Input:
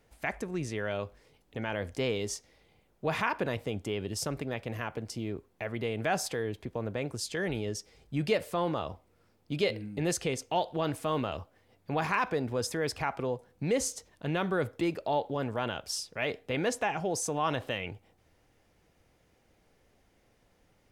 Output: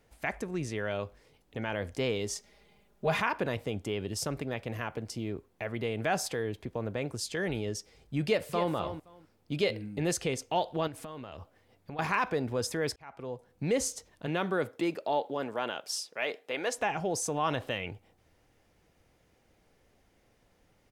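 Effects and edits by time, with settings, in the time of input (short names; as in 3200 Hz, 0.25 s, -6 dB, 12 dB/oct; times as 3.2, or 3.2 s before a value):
2.35–3.2 comb 4.9 ms, depth 84%
8.23–8.73 echo throw 0.26 s, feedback 15%, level -9.5 dB
10.87–11.99 compressor 10:1, threshold -38 dBFS
12.96–13.65 fade in
14.26–16.77 HPF 150 Hz -> 480 Hz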